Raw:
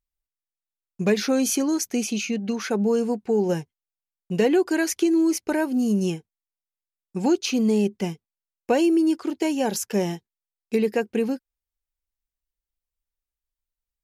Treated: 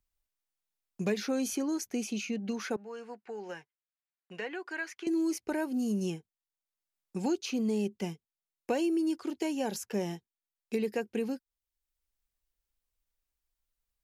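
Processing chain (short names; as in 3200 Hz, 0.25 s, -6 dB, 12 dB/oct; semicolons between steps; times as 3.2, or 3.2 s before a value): 2.76–5.07 band-pass 1700 Hz, Q 1.4; three-band squash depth 40%; gain -9 dB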